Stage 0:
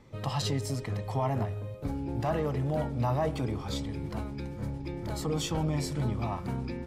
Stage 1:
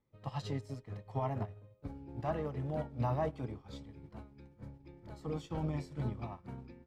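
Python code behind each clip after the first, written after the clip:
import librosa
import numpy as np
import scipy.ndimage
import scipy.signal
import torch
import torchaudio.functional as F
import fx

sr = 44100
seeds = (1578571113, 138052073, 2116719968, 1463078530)

y = fx.lowpass(x, sr, hz=3300.0, slope=6)
y = fx.upward_expand(y, sr, threshold_db=-41.0, expansion=2.5)
y = y * librosa.db_to_amplitude(-3.5)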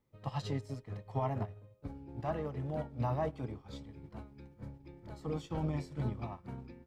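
y = fx.rider(x, sr, range_db=3, speed_s=2.0)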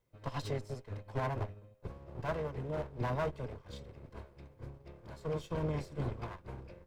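y = fx.lower_of_two(x, sr, delay_ms=1.9)
y = y * librosa.db_to_amplitude(1.0)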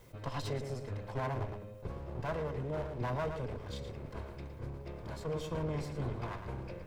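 y = x + 10.0 ** (-12.5 / 20.0) * np.pad(x, (int(113 * sr / 1000.0), 0))[:len(x)]
y = fx.env_flatten(y, sr, amount_pct=50)
y = y * librosa.db_to_amplitude(-2.0)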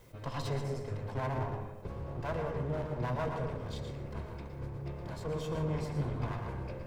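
y = fx.rev_plate(x, sr, seeds[0], rt60_s=0.78, hf_ratio=0.3, predelay_ms=110, drr_db=5.0)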